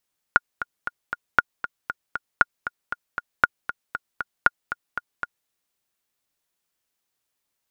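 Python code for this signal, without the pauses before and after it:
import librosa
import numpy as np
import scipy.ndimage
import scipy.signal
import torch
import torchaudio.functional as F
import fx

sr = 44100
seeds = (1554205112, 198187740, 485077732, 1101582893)

y = fx.click_track(sr, bpm=234, beats=4, bars=5, hz=1430.0, accent_db=12.5, level_db=-1.0)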